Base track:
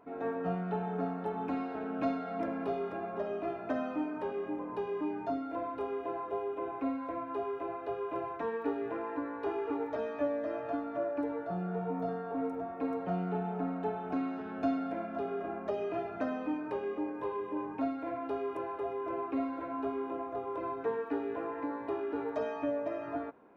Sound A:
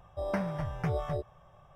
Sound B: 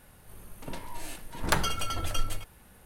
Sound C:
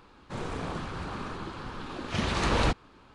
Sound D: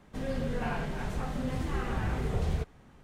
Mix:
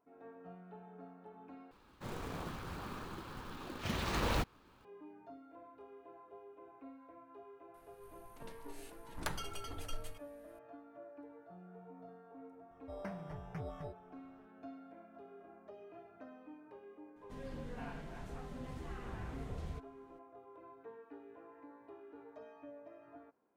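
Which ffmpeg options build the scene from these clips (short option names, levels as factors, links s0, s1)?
-filter_complex "[0:a]volume=0.112[s0];[3:a]acrusher=bits=4:mode=log:mix=0:aa=0.000001[s1];[s0]asplit=2[s2][s3];[s2]atrim=end=1.714[s4];[s1]atrim=end=3.14,asetpts=PTS-STARTPTS,volume=0.376[s5];[s3]atrim=start=4.846[s6];[2:a]atrim=end=2.85,asetpts=PTS-STARTPTS,volume=0.2,afade=t=in:d=0.004:c=hsin,afade=t=out:st=2.846:d=0.004:c=hsin,adelay=7740[s7];[1:a]atrim=end=1.75,asetpts=PTS-STARTPTS,volume=0.224,afade=t=in:d=0.004:c=hsin,afade=t=out:st=1.746:d=0.004:c=hsin,adelay=12710[s8];[4:a]atrim=end=3.03,asetpts=PTS-STARTPTS,volume=0.211,afade=t=in:d=0.004:c=hsin,afade=t=out:st=3.026:d=0.004:c=hsin,adelay=756756S[s9];[s4][s5]acrossfade=d=0.004:c1=hsin:c2=hsin[s10];[s10][s6]acrossfade=d=0.004:c1=hsin:c2=hsin[s11];[s11][s7][s8][s9]amix=inputs=4:normalize=0"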